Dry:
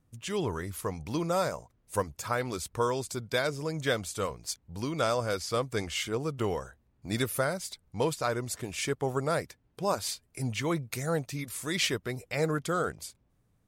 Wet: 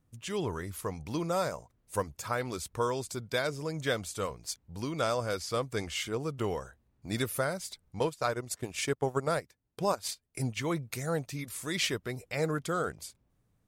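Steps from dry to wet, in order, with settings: 7.99–10.57 s: transient shaper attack +4 dB, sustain -11 dB; trim -2 dB

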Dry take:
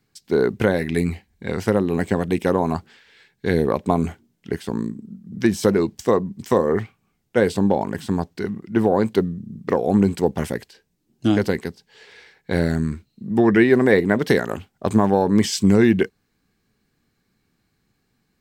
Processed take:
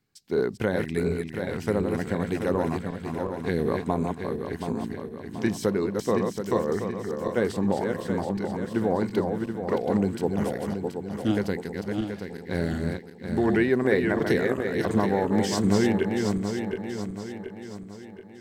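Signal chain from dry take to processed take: backward echo that repeats 364 ms, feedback 68%, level -4.5 dB; trim -7.5 dB

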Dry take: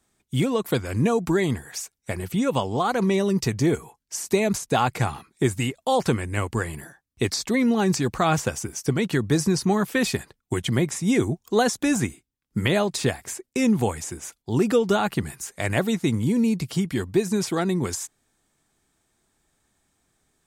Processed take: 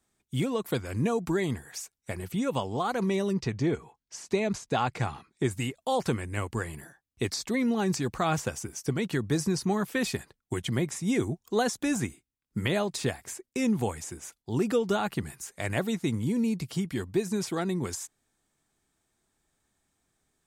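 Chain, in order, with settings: 3.33–5.49 s: low-pass 4.4 kHz -> 7.8 kHz 12 dB/octave; trim -6 dB

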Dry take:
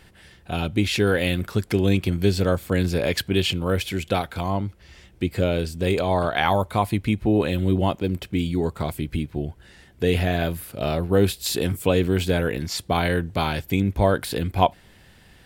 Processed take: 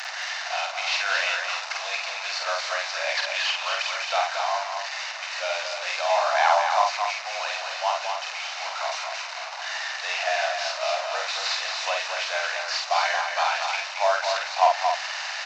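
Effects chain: one-bit delta coder 32 kbps, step -25.5 dBFS; steep high-pass 630 Hz 72 dB/octave; band-stop 3.3 kHz, Q 8.1; doubling 49 ms -3 dB; delay 226 ms -5.5 dB; trim +1 dB

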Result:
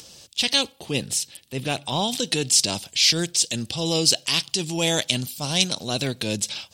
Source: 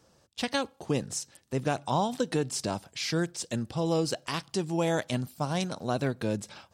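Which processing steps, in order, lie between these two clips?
0.72–2.08 s: peaking EQ 6.4 kHz -10 dB 0.9 oct; transient shaper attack -5 dB, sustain +1 dB; resonant high shelf 2.1 kHz +12.5 dB, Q 1.5; upward compressor, threshold -42 dBFS; trim +3.5 dB

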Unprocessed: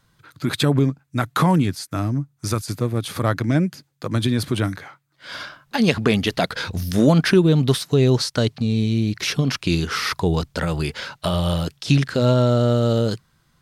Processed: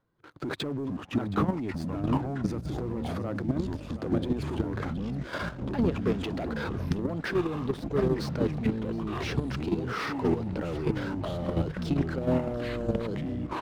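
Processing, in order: FFT filter 150 Hz 0 dB, 360 Hz +12 dB, 11 kHz -18 dB; compression 2.5:1, threshold -18 dBFS, peak gain reduction 12 dB; waveshaping leveller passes 2; peak limiter -15.5 dBFS, peak gain reduction 10.5 dB; feedback delay 721 ms, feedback 39%, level -16 dB; ever faster or slower copies 311 ms, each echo -5 st, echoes 3; level held to a coarse grid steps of 9 dB; trim -5 dB

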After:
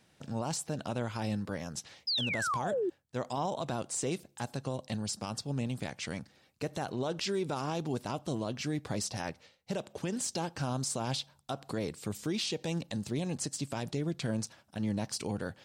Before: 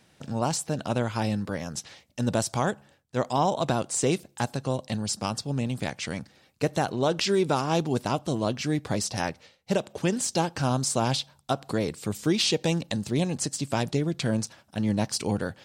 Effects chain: painted sound fall, 2.07–2.90 s, 330–5200 Hz -25 dBFS; peak limiter -19 dBFS, peak gain reduction 7.5 dB; trim -5.5 dB

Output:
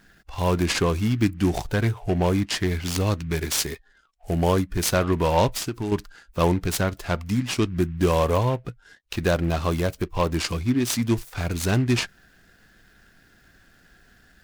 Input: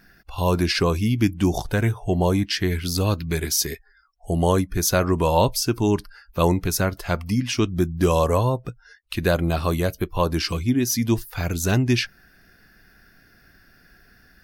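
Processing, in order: 5.47–5.92 s: compression 5:1, threshold -24 dBFS, peak gain reduction 8 dB; delay time shaken by noise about 1.7 kHz, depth 0.031 ms; trim -1.5 dB

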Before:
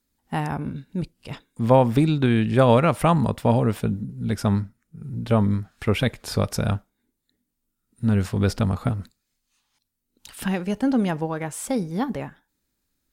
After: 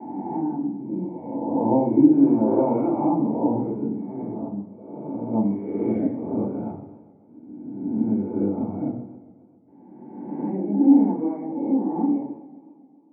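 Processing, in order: reverse spectral sustain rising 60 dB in 1.71 s; gate with hold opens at -39 dBFS; reverb removal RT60 1 s; 4.21–5.33 s: compression, threshold -24 dBFS, peak gain reduction 9 dB; cascade formant filter u; flange 1.7 Hz, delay 7.4 ms, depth 6.2 ms, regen -31%; band-pass 200–3200 Hz; reverberation RT60 0.85 s, pre-delay 3 ms, DRR -2 dB; modulated delay 134 ms, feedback 71%, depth 153 cents, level -20 dB

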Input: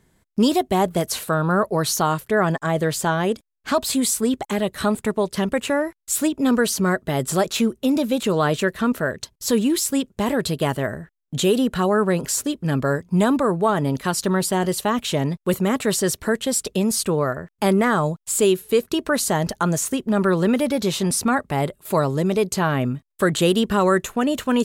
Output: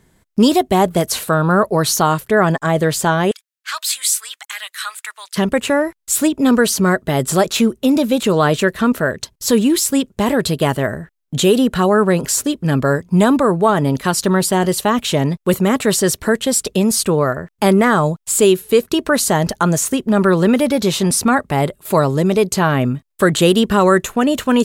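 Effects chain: 3.31–5.36 s: high-pass 1.4 kHz 24 dB/octave; trim +5.5 dB

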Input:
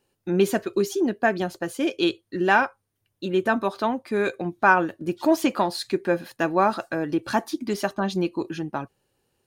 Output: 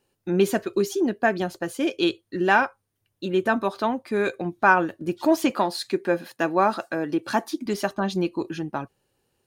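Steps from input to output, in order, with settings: 5.50–7.66 s: high-pass 160 Hz 12 dB/octave

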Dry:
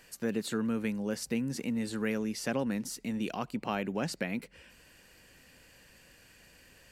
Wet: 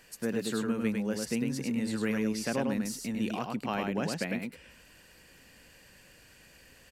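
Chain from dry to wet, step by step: delay 102 ms -3.5 dB

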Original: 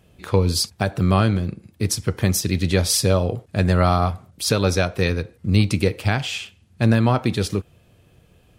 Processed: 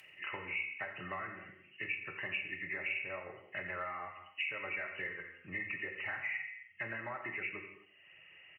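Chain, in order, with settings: knee-point frequency compression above 1.7 kHz 4:1; reverb removal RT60 0.71 s; low-pass that closes with the level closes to 1.6 kHz, closed at -18.5 dBFS; differentiator; compression, threshold -41 dBFS, peak gain reduction 12 dB; treble shelf 2.1 kHz +10 dB; comb of notches 240 Hz; on a send: feedback delay 87 ms, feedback 51%, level -19 dB; on the sum: gated-style reverb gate 290 ms falling, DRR 4.5 dB; three bands compressed up and down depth 40%; trim +2 dB

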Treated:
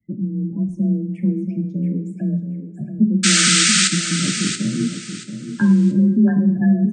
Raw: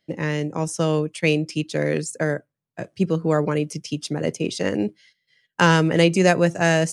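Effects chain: RIAA curve playback; spectral gate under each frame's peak -15 dB strong; FFT filter 130 Hz 0 dB, 310 Hz -7 dB, 470 Hz -24 dB, 2 kHz +3 dB, 3.8 kHz -29 dB, 7.9 kHz -12 dB; painted sound noise, 3.23–3.88 s, 1.2–8.9 kHz -15 dBFS; on a send: feedback delay 680 ms, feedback 27%, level -9 dB; on the sum: two-slope reverb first 0.66 s, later 2.2 s, from -17 dB, DRR 6 dB; frequency shift +29 Hz; trim -1 dB

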